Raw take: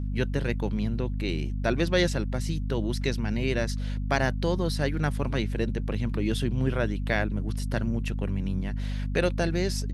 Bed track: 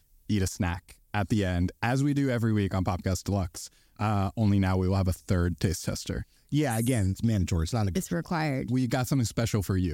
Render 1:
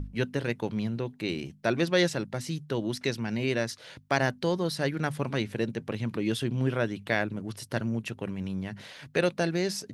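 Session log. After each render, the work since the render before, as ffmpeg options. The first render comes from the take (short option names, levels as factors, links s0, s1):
-af "bandreject=f=50:t=h:w=6,bandreject=f=100:t=h:w=6,bandreject=f=150:t=h:w=6,bandreject=f=200:t=h:w=6,bandreject=f=250:t=h:w=6"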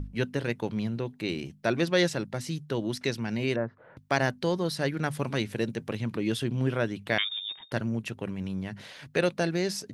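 -filter_complex "[0:a]asettb=1/sr,asplit=3[s0][s1][s2];[s0]atrim=end=3.564[s3];[s1]atrim=start=3.56:end=3.97,asetpts=PTS-STARTPTS,afade=t=in:d=0.004:c=qsin,afade=t=out:st=0.406:d=0.004:c=qsin,lowpass=f=1400:w=0.5412,lowpass=f=1400:w=1.3066[s4];[s2]atrim=start=3.966[s5];[s3][s4]acrossfade=d=0.004:c1=hsin:c2=qsin[s6];[s6][s5]acrossfade=d=0.004:c1=qsin:c2=hsin,asettb=1/sr,asplit=3[s7][s8][s9];[s7]atrim=end=5.124[s10];[s8]atrim=start=5.12:end=5.97,asetpts=PTS-STARTPTS,afade=t=in:d=0.004:c=qsin,afade=t=out:st=0.846:d=0.004:c=qsin,highshelf=f=5100:g=5.5[s11];[s9]atrim=start=5.966[s12];[s10][s11]acrossfade=d=0.004:c1=hsin:c2=qsin[s13];[s13][s12]acrossfade=d=0.004:c1=qsin:c2=hsin,asettb=1/sr,asplit=3[s14][s15][s16];[s14]atrim=end=7.184[s17];[s15]atrim=start=7.18:end=7.72,asetpts=PTS-STARTPTS,afade=t=in:d=0.004:c=qsin,afade=t=out:st=0.536:d=0.004:c=qsin,lowpass=f=3200:t=q:w=0.5098,lowpass=f=3200:t=q:w=0.6013,lowpass=f=3200:t=q:w=0.9,lowpass=f=3200:t=q:w=2.563,afreqshift=-3800[s18];[s16]atrim=start=7.716[s19];[s17][s18]acrossfade=d=0.004:c1=hsin:c2=qsin[s20];[s20][s19]acrossfade=d=0.004:c1=qsin:c2=hsin"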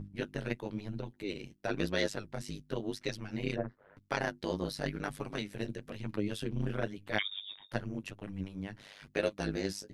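-af "flanger=delay=9.3:depth=7.5:regen=13:speed=0.97:shape=sinusoidal,tremolo=f=100:d=0.974"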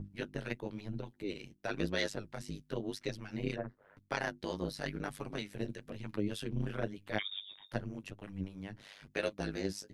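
-filter_complex "[0:a]acrossover=split=770[s0][s1];[s0]aeval=exprs='val(0)*(1-0.5/2+0.5/2*cos(2*PI*3.2*n/s))':c=same[s2];[s1]aeval=exprs='val(0)*(1-0.5/2-0.5/2*cos(2*PI*3.2*n/s))':c=same[s3];[s2][s3]amix=inputs=2:normalize=0"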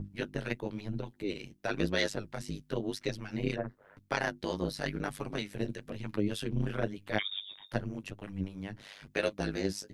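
-af "volume=1.58"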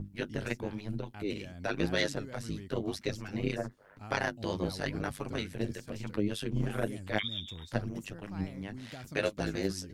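-filter_complex "[1:a]volume=0.112[s0];[0:a][s0]amix=inputs=2:normalize=0"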